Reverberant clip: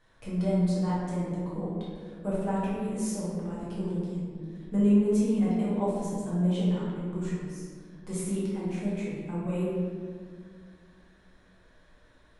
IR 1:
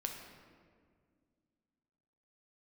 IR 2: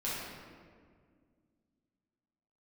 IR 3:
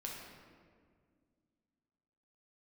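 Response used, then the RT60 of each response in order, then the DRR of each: 2; 2.0 s, 1.9 s, 1.9 s; 2.5 dB, -9.0 dB, -2.5 dB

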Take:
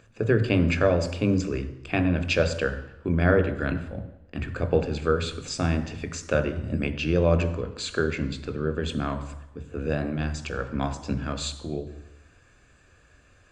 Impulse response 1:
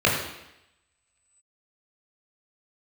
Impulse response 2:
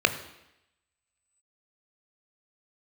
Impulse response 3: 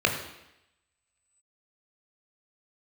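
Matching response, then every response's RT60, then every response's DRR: 2; 0.85 s, 0.85 s, 0.85 s; -4.0 dB, 9.0 dB, 2.5 dB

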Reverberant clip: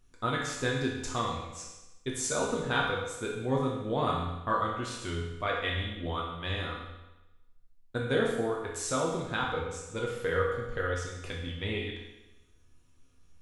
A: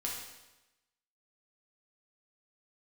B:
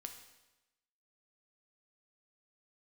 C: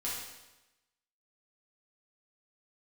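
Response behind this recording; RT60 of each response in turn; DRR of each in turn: A; 1.0 s, 1.0 s, 1.0 s; -3.5 dB, 5.0 dB, -7.5 dB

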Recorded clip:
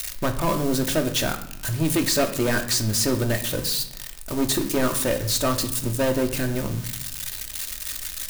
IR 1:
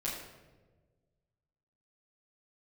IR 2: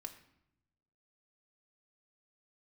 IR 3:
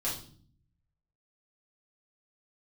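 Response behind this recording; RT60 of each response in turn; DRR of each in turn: 2; 1.4 s, 0.80 s, 0.50 s; -7.0 dB, 4.0 dB, -7.5 dB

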